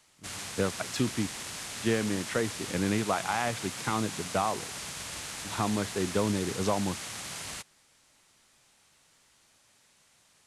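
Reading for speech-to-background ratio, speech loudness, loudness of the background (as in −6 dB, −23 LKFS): 5.5 dB, −31.5 LKFS, −37.0 LKFS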